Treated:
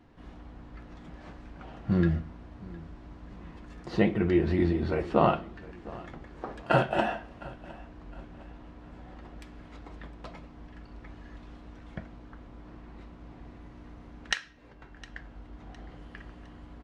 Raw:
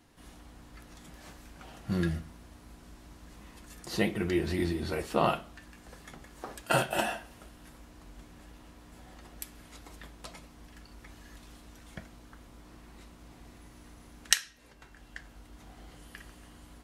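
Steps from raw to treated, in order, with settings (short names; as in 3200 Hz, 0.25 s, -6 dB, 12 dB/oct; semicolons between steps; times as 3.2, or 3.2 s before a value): tape spacing loss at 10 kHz 31 dB; feedback echo 0.71 s, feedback 38%, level -20.5 dB; gain +6 dB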